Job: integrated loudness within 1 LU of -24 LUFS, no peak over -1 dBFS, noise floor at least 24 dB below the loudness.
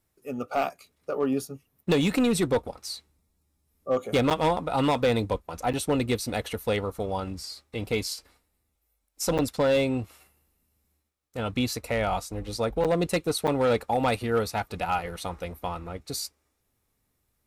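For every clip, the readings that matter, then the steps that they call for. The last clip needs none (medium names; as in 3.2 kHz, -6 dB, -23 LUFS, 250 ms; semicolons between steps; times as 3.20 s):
clipped samples 1.0%; clipping level -17.5 dBFS; dropouts 5; longest dropout 7.3 ms; loudness -27.5 LUFS; peak level -17.5 dBFS; loudness target -24.0 LUFS
-> clip repair -17.5 dBFS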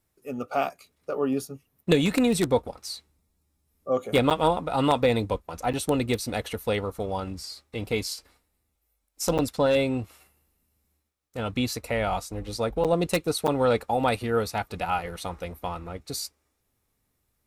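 clipped samples 0.0%; dropouts 5; longest dropout 7.3 ms
-> interpolate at 4.30/5.73/9.38/12.84/13.47 s, 7.3 ms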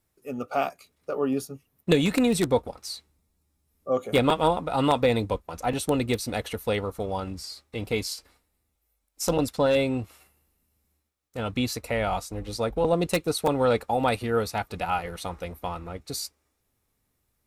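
dropouts 0; loudness -27.0 LUFS; peak level -8.5 dBFS; loudness target -24.0 LUFS
-> trim +3 dB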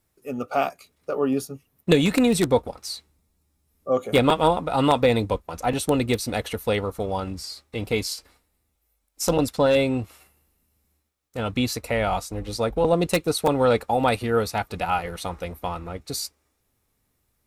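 loudness -24.0 LUFS; peak level -5.5 dBFS; noise floor -72 dBFS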